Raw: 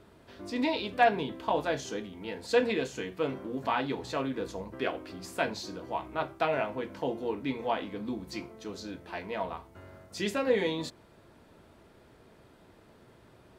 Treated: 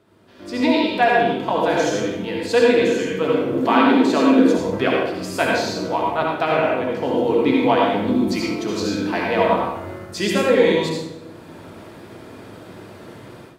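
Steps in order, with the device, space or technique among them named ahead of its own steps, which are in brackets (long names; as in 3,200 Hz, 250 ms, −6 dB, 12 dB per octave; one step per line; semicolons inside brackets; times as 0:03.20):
far laptop microphone (convolution reverb RT60 0.90 s, pre-delay 58 ms, DRR −2 dB; high-pass filter 100 Hz; automatic gain control gain up to 16.5 dB)
0:03.68–0:04.58: low shelf with overshoot 150 Hz −13 dB, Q 3
level −2.5 dB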